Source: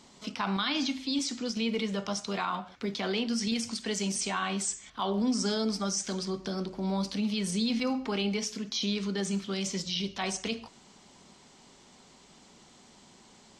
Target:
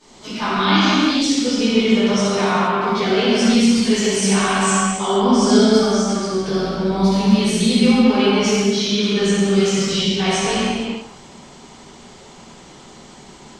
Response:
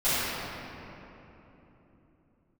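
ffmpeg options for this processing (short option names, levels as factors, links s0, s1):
-filter_complex "[0:a]asettb=1/sr,asplit=3[s0][s1][s2];[s0]atrim=end=5.844[s3];[s1]atrim=start=5.84:end=6.31,asetpts=PTS-STARTPTS,afade=t=in:d=0.004:c=qsin,afade=t=out:st=0.466:d=0.004:c=qsin,acompressor=threshold=0.0178:ratio=6[s4];[s2]atrim=start=6.306[s5];[s3][s4]acrossfade=d=0.004:c1=hsin:c2=qsin[s6];[s6][s5]acrossfade=d=0.004:c1=qsin:c2=hsin[s7];[1:a]atrim=start_sample=2205,afade=t=out:st=0.35:d=0.01,atrim=end_sample=15876,asetrate=26460,aresample=44100[s8];[s7][s8]afir=irnorm=-1:irlink=0,volume=0.708"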